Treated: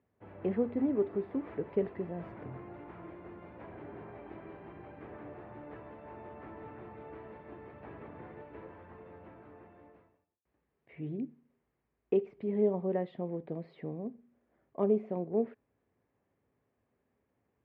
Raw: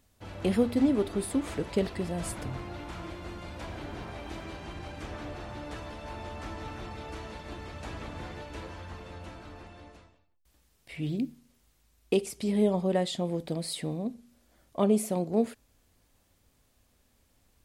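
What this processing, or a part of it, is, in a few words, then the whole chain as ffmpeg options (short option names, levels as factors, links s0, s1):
bass cabinet: -af "highpass=f=76:w=0.5412,highpass=f=76:w=1.3066,equalizer=f=81:t=q:w=4:g=-10,equalizer=f=410:t=q:w=4:g=7,equalizer=f=1400:t=q:w=4:g=-4,lowpass=f=2000:w=0.5412,lowpass=f=2000:w=1.3066,volume=0.447"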